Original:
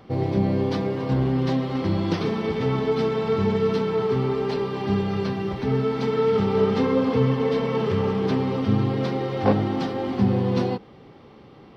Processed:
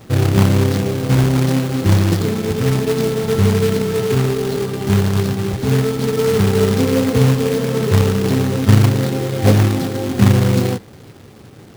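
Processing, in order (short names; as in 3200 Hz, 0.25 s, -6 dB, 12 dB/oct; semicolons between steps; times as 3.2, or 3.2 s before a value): fifteen-band EQ 100 Hz +10 dB, 1000 Hz -11 dB, 2500 Hz -11 dB; companded quantiser 4-bit; gain +5 dB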